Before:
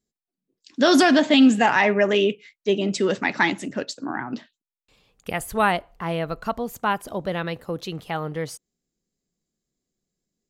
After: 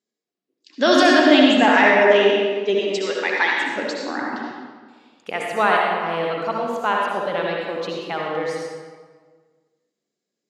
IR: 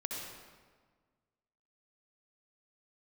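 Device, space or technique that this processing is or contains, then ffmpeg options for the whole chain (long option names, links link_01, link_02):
supermarket ceiling speaker: -filter_complex "[0:a]asettb=1/sr,asplit=3[link_01][link_02][link_03];[link_01]atrim=end=2.794[link_04];[link_02]atrim=start=2.79:end=3.66,asetpts=PTS-STARTPTS,afade=type=in:duration=0.004:curve=qsin,afade=type=out:start_time=0.866:duration=0.004:curve=qsin,highpass=frequency=870:poles=1[link_05];[link_03]atrim=start=3.656[link_06];[link_04][link_05]acrossfade=duration=0.004:curve1=hsin:curve2=qsin[link_07];[link_07][link_06]acrossfade=duration=0.004:curve1=qsin:curve2=hsin,highpass=320,lowpass=5500[link_08];[1:a]atrim=start_sample=2205[link_09];[link_08][link_09]afir=irnorm=-1:irlink=0,volume=3.5dB"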